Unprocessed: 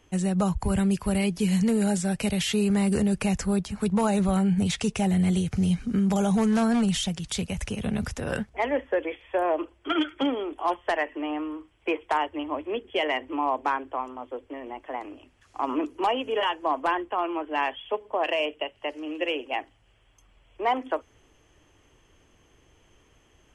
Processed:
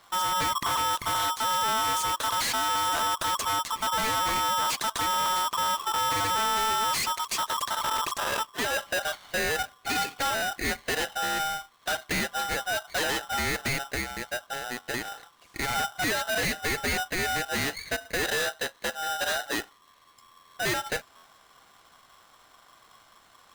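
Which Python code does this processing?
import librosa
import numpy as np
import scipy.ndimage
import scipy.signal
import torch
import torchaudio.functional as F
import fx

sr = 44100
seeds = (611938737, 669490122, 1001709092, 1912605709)

y = np.clip(x, -10.0 ** (-28.0 / 20.0), 10.0 ** (-28.0 / 20.0))
y = fx.buffer_glitch(y, sr, at_s=(5.19, 10.35, 14.81, 21.16), block=512, repeats=5)
y = y * np.sign(np.sin(2.0 * np.pi * 1100.0 * np.arange(len(y)) / sr))
y = y * 10.0 ** (3.0 / 20.0)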